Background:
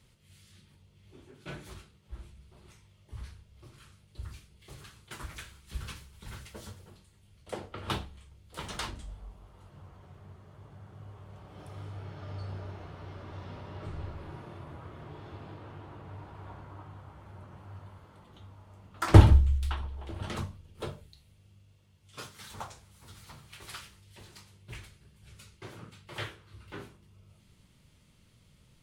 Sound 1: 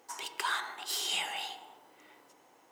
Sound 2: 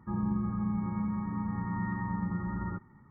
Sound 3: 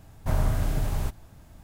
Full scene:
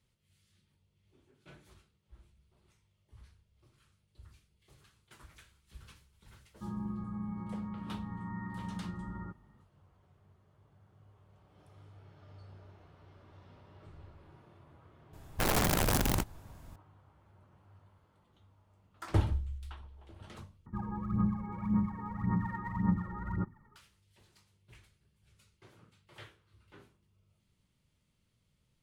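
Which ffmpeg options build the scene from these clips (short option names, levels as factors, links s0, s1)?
-filter_complex "[2:a]asplit=2[s0][s1];[0:a]volume=0.211[s2];[3:a]aeval=exprs='(mod(11.2*val(0)+1,2)-1)/11.2':c=same[s3];[s1]aphaser=in_gain=1:out_gain=1:delay=2.4:decay=0.72:speed=1.8:type=sinusoidal[s4];[s2]asplit=2[s5][s6];[s5]atrim=end=20.664[s7];[s4]atrim=end=3.1,asetpts=PTS-STARTPTS,volume=0.531[s8];[s6]atrim=start=23.756[s9];[s0]atrim=end=3.1,asetpts=PTS-STARTPTS,volume=0.422,afade=t=in:d=0.004:c=hsin,afade=t=out:st=3.096:d=0.004:c=hsin,adelay=6540[s10];[s3]atrim=end=1.63,asetpts=PTS-STARTPTS,volume=0.75,afade=t=in:d=0.004:c=hsin,afade=t=out:st=1.626:d=0.004:c=hsin,adelay=15130[s11];[s7][s8]acrossfade=d=0.004:c1=hsin:c2=hsin[s12];[s12][s9]acrossfade=d=0.004:c1=hsin:c2=hsin[s13];[s13][s10][s11]amix=inputs=3:normalize=0"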